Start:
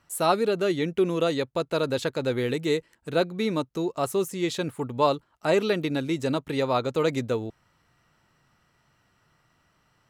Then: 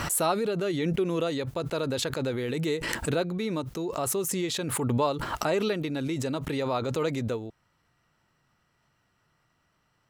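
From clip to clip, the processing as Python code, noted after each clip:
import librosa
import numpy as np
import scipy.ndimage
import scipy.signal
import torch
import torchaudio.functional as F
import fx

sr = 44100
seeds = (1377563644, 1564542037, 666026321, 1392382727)

y = fx.pre_swell(x, sr, db_per_s=22.0)
y = y * 10.0 ** (-5.0 / 20.0)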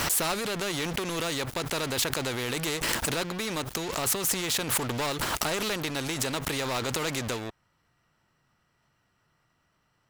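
y = fx.leveller(x, sr, passes=3)
y = fx.spectral_comp(y, sr, ratio=2.0)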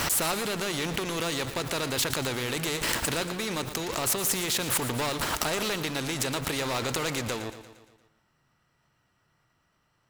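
y = fx.echo_feedback(x, sr, ms=116, feedback_pct=55, wet_db=-12.0)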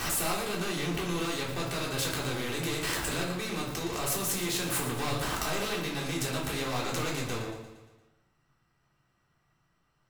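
y = fx.room_shoebox(x, sr, seeds[0], volume_m3=500.0, walls='furnished', distance_m=3.6)
y = y * 10.0 ** (-8.5 / 20.0)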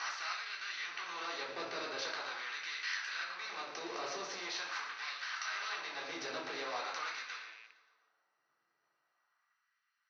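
y = fx.rattle_buzz(x, sr, strikes_db=-47.0, level_db=-38.0)
y = fx.filter_lfo_highpass(y, sr, shape='sine', hz=0.43, low_hz=410.0, high_hz=1800.0, q=1.3)
y = scipy.signal.sosfilt(scipy.signal.cheby1(6, 6, 6100.0, 'lowpass', fs=sr, output='sos'), y)
y = y * 10.0 ** (-3.5 / 20.0)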